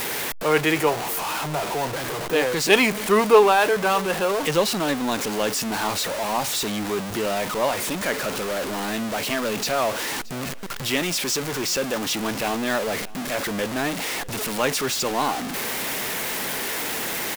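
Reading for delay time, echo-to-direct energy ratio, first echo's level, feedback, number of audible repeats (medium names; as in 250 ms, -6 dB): 624 ms, -21.5 dB, -22.0 dB, 39%, 2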